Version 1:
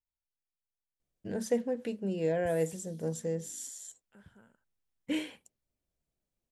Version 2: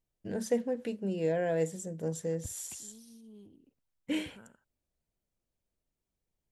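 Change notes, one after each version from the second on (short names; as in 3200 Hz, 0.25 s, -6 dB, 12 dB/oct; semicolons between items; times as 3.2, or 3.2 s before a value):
first voice: entry -1.00 s; second voice +6.0 dB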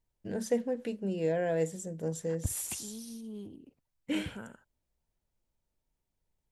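second voice +10.0 dB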